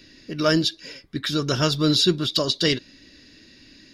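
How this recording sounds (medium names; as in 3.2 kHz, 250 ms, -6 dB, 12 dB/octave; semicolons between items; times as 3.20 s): noise floor -51 dBFS; spectral tilt -4.5 dB/octave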